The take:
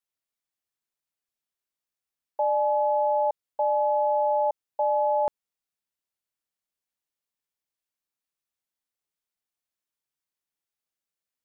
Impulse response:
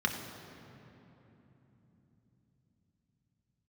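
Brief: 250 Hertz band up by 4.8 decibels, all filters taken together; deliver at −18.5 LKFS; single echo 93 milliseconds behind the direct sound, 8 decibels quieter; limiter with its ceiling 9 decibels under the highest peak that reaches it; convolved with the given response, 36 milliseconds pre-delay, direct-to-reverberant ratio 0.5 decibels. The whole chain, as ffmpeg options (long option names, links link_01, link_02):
-filter_complex "[0:a]equalizer=frequency=250:width_type=o:gain=6.5,alimiter=level_in=1.5dB:limit=-24dB:level=0:latency=1,volume=-1.5dB,aecho=1:1:93:0.398,asplit=2[link_01][link_02];[1:a]atrim=start_sample=2205,adelay=36[link_03];[link_02][link_03]afir=irnorm=-1:irlink=0,volume=-8.5dB[link_04];[link_01][link_04]amix=inputs=2:normalize=0,volume=16dB"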